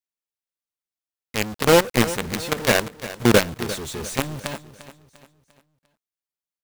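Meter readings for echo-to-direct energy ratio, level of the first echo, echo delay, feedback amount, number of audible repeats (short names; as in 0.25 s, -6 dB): -14.0 dB, -15.0 dB, 0.348 s, 42%, 3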